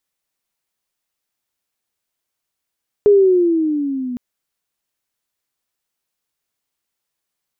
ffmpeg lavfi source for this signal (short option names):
-f lavfi -i "aevalsrc='pow(10,(-6-16*t/1.11)/20)*sin(2*PI*418*1.11/(-9.5*log(2)/12)*(exp(-9.5*log(2)/12*t/1.11)-1))':d=1.11:s=44100"